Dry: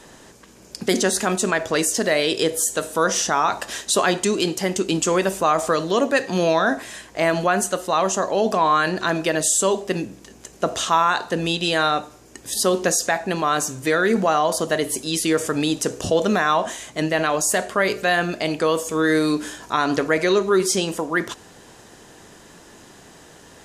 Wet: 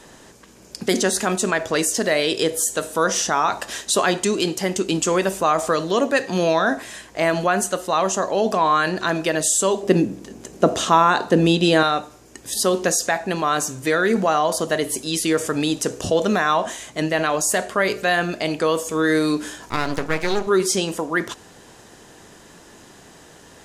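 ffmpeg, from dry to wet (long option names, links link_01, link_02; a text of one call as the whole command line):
ffmpeg -i in.wav -filter_complex "[0:a]asettb=1/sr,asplit=3[link_01][link_02][link_03];[link_01]atrim=end=9.834[link_04];[link_02]atrim=start=9.83:end=11.83,asetpts=PTS-STARTPTS,afade=type=in:duration=0.004:curve=qsin,afade=type=out:start_time=1.996:duration=0.004:curve=qsin,equalizer=frequency=260:width_type=o:width=2.7:gain=9.5[link_05];[link_03]atrim=start=11.826[link_06];[link_04][link_05]acrossfade=duration=0.004:curve1=hsin:curve2=qsin[link_07];[link_07][link_06]acrossfade=duration=0.004:curve1=qsin:curve2=hsin,asettb=1/sr,asplit=3[link_08][link_09][link_10];[link_08]atrim=end=19.694[link_11];[link_09]atrim=start=19.69:end=20.47,asetpts=PTS-STARTPTS,afade=type=in:duration=0.004:curve=qsin,afade=type=out:start_time=0.776:duration=0.004:curve=qsin,aeval=exprs='max(val(0),0)':channel_layout=same[link_12];[link_10]atrim=start=20.466[link_13];[link_11][link_12]acrossfade=duration=0.004:curve1=hsin:curve2=qsin[link_14];[link_14][link_13]acrossfade=duration=0.004:curve1=qsin:curve2=hsin" out.wav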